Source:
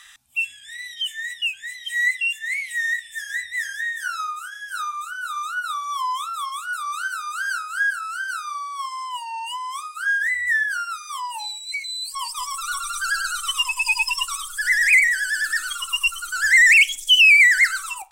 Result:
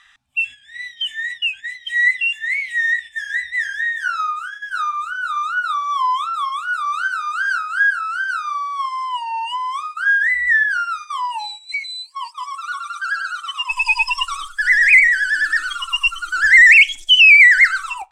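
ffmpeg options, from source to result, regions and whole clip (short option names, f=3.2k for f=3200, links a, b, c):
-filter_complex "[0:a]asettb=1/sr,asplit=3[a][b][c];[a]atrim=end=12.024[d];[b]atrim=start=12.02:end=13.7,asetpts=PTS-STARTPTS,afade=t=in:d=0.004:c=qsin,afade=t=out:st=1.676:d=0.004:c=qsin,highpass=f=930:p=1,highshelf=f=2.2k:g=-8.5[e];[c]atrim=start=13.696[f];[d][e]acrossfade=d=0.004:c1=hsin:c2=qsin[g];[g][f]acrossfade=d=0.004:c1=qsin:c2=hsin,aemphasis=mode=reproduction:type=50fm,agate=range=-8dB:threshold=-37dB:ratio=16:detection=peak,highshelf=f=6.7k:g=-10,volume=7dB"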